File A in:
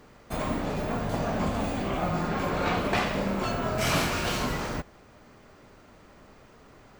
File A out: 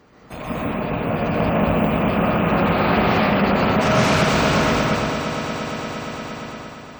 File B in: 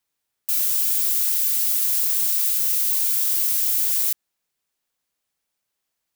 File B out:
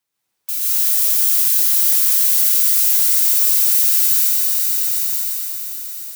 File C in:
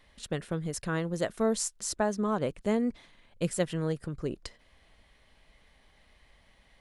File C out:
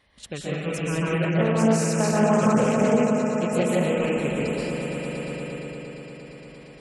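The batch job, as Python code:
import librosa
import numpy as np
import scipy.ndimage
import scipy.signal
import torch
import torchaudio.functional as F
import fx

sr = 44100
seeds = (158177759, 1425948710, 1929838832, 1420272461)

p1 = fx.rattle_buzz(x, sr, strikes_db=-36.0, level_db=-28.0)
p2 = scipy.signal.sosfilt(scipy.signal.butter(2, 49.0, 'highpass', fs=sr, output='sos'), p1)
p3 = fx.echo_swell(p2, sr, ms=116, loudest=5, wet_db=-12.0)
p4 = fx.level_steps(p3, sr, step_db=14)
p5 = p3 + (p4 * librosa.db_to_amplitude(-2.0))
p6 = fx.rev_plate(p5, sr, seeds[0], rt60_s=1.9, hf_ratio=0.7, predelay_ms=115, drr_db=-6.5)
p7 = fx.spec_gate(p6, sr, threshold_db=-30, keep='strong')
p8 = fx.doppler_dist(p7, sr, depth_ms=0.22)
y = p8 * librosa.db_to_amplitude(-3.5)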